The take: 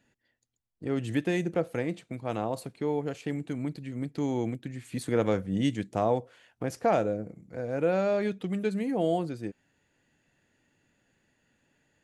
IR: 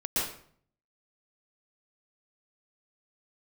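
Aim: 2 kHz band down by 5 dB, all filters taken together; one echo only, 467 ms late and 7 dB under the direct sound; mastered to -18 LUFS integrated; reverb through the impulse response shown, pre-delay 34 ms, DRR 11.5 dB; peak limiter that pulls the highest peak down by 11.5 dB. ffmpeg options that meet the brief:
-filter_complex "[0:a]equalizer=f=2000:t=o:g=-6.5,alimiter=level_in=1.12:limit=0.0631:level=0:latency=1,volume=0.891,aecho=1:1:467:0.447,asplit=2[s0][s1];[1:a]atrim=start_sample=2205,adelay=34[s2];[s1][s2]afir=irnorm=-1:irlink=0,volume=0.106[s3];[s0][s3]amix=inputs=2:normalize=0,volume=6.68"

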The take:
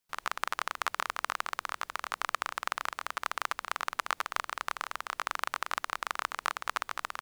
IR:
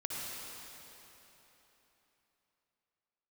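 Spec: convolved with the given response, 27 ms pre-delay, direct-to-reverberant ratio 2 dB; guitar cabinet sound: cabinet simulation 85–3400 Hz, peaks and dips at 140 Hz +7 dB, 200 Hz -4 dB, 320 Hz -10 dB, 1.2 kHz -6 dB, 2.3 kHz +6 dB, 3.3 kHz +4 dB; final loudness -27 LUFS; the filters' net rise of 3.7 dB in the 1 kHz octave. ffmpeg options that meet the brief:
-filter_complex "[0:a]equalizer=f=1000:t=o:g=8.5,asplit=2[s0][s1];[1:a]atrim=start_sample=2205,adelay=27[s2];[s1][s2]afir=irnorm=-1:irlink=0,volume=0.562[s3];[s0][s3]amix=inputs=2:normalize=0,highpass=85,equalizer=f=140:t=q:w=4:g=7,equalizer=f=200:t=q:w=4:g=-4,equalizer=f=320:t=q:w=4:g=-10,equalizer=f=1200:t=q:w=4:g=-6,equalizer=f=2300:t=q:w=4:g=6,equalizer=f=3300:t=q:w=4:g=4,lowpass=f=3400:w=0.5412,lowpass=f=3400:w=1.3066,volume=1.33"

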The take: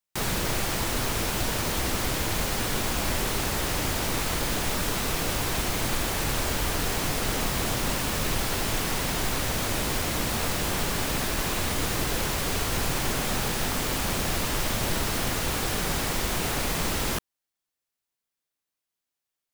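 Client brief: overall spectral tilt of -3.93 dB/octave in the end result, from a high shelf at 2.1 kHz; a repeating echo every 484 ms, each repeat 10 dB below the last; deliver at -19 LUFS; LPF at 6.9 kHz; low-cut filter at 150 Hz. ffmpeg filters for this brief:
-af "highpass=150,lowpass=6900,highshelf=f=2100:g=-6.5,aecho=1:1:484|968|1452|1936:0.316|0.101|0.0324|0.0104,volume=3.98"

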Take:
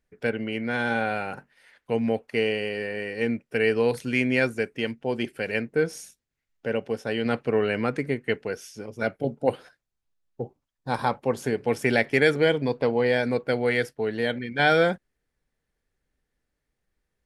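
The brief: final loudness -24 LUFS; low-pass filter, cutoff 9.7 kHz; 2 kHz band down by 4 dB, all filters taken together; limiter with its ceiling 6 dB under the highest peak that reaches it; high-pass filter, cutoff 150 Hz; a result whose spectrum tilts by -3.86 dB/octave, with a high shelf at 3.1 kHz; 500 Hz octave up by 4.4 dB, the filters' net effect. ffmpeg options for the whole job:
-af "highpass=150,lowpass=9700,equalizer=f=500:t=o:g=5,equalizer=f=2000:t=o:g=-8,highshelf=f=3100:g=7,volume=1.06,alimiter=limit=0.282:level=0:latency=1"

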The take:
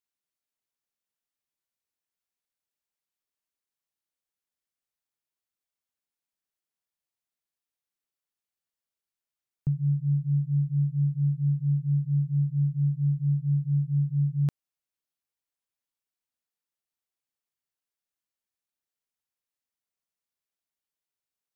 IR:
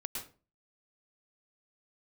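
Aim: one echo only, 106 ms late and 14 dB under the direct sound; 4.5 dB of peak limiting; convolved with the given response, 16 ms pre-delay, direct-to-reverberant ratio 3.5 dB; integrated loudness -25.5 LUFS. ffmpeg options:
-filter_complex "[0:a]alimiter=limit=0.0668:level=0:latency=1,aecho=1:1:106:0.2,asplit=2[s0][s1];[1:a]atrim=start_sample=2205,adelay=16[s2];[s1][s2]afir=irnorm=-1:irlink=0,volume=0.668[s3];[s0][s3]amix=inputs=2:normalize=0,volume=1.5"

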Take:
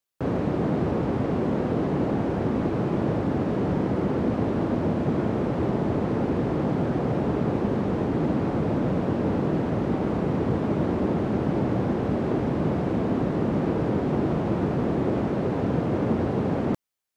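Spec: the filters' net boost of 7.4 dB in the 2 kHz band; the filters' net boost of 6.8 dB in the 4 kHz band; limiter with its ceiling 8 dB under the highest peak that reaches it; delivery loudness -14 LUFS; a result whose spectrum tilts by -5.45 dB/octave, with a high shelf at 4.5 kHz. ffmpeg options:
-af "equalizer=f=2000:t=o:g=8,equalizer=f=4000:t=o:g=4,highshelf=f=4500:g=3.5,volume=5.01,alimiter=limit=0.562:level=0:latency=1"

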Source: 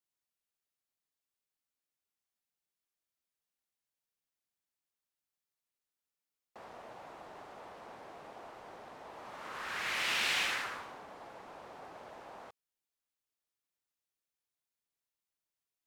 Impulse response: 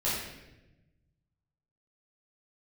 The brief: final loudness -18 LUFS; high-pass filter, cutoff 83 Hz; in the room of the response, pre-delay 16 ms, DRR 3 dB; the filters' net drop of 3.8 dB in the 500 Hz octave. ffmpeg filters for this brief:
-filter_complex "[0:a]highpass=83,equalizer=f=500:t=o:g=-5,asplit=2[s0][s1];[1:a]atrim=start_sample=2205,adelay=16[s2];[s1][s2]afir=irnorm=-1:irlink=0,volume=0.266[s3];[s0][s3]amix=inputs=2:normalize=0,volume=5.31"

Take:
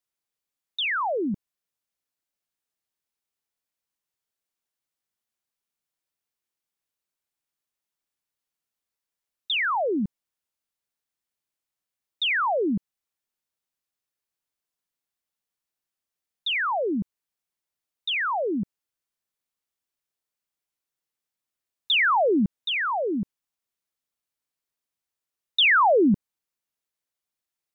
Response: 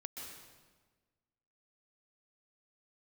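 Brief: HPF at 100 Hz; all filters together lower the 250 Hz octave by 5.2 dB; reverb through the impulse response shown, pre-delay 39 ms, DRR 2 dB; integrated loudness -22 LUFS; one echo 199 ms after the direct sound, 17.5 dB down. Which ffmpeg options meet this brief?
-filter_complex "[0:a]highpass=100,equalizer=f=250:t=o:g=-6.5,aecho=1:1:199:0.133,asplit=2[s0][s1];[1:a]atrim=start_sample=2205,adelay=39[s2];[s1][s2]afir=irnorm=-1:irlink=0,volume=1.06[s3];[s0][s3]amix=inputs=2:normalize=0,volume=1.06"

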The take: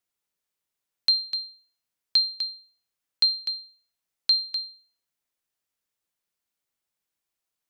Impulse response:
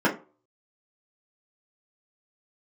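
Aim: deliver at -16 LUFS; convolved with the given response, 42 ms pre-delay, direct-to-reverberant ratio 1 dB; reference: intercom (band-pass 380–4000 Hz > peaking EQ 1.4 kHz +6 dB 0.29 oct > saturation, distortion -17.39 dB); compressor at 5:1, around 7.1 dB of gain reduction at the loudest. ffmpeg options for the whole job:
-filter_complex "[0:a]acompressor=threshold=0.0631:ratio=5,asplit=2[s0][s1];[1:a]atrim=start_sample=2205,adelay=42[s2];[s1][s2]afir=irnorm=-1:irlink=0,volume=0.133[s3];[s0][s3]amix=inputs=2:normalize=0,highpass=380,lowpass=4000,equalizer=f=1400:t=o:w=0.29:g=6,asoftclip=threshold=0.0841,volume=7.08"

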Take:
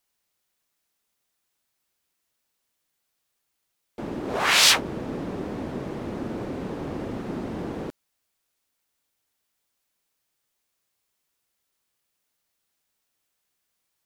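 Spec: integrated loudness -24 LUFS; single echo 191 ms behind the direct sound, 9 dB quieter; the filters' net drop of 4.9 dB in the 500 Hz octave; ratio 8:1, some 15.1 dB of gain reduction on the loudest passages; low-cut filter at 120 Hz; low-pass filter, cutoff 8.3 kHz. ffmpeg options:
-af "highpass=120,lowpass=8300,equalizer=f=500:t=o:g=-6.5,acompressor=threshold=0.0355:ratio=8,aecho=1:1:191:0.355,volume=3.35"

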